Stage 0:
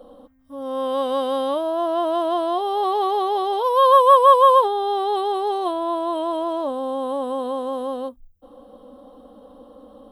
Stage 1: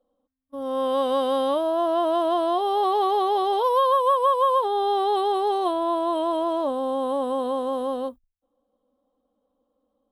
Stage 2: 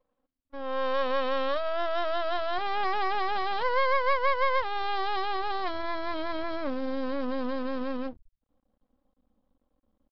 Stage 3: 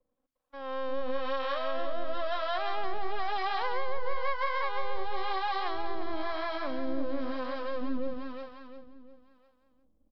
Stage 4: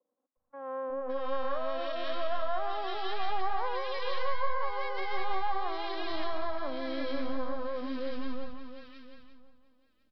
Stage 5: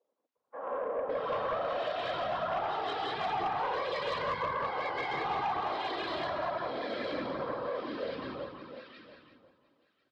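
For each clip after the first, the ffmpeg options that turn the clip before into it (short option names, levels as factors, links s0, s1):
-af "agate=range=0.0398:threshold=0.0141:ratio=16:detection=peak,acompressor=threshold=0.158:ratio=12"
-af "asubboost=boost=9.5:cutoff=140,aresample=11025,aeval=exprs='max(val(0),0)':c=same,aresample=44100"
-filter_complex "[0:a]asplit=2[s0][s1];[s1]aecho=0:1:352|704|1056|1408|1760:0.668|0.274|0.112|0.0461|0.0189[s2];[s0][s2]amix=inputs=2:normalize=0,acrossover=split=140[s3][s4];[s4]acompressor=threshold=0.0501:ratio=5[s5];[s3][s5]amix=inputs=2:normalize=0,acrossover=split=560[s6][s7];[s6]aeval=exprs='val(0)*(1-0.7/2+0.7/2*cos(2*PI*1*n/s))':c=same[s8];[s7]aeval=exprs='val(0)*(1-0.7/2-0.7/2*cos(2*PI*1*n/s))':c=same[s9];[s8][s9]amix=inputs=2:normalize=0"
-filter_complex "[0:a]acrossover=split=220|1600[s0][s1][s2];[s0]adelay=360[s3];[s2]adelay=560[s4];[s3][s1][s4]amix=inputs=3:normalize=0"
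-af "afftfilt=real='hypot(re,im)*cos(2*PI*random(0))':imag='hypot(re,im)*sin(2*PI*random(1))':win_size=512:overlap=0.75,highpass=350,lowpass=4400,aeval=exprs='0.0473*sin(PI/2*1.78*val(0)/0.0473)':c=same"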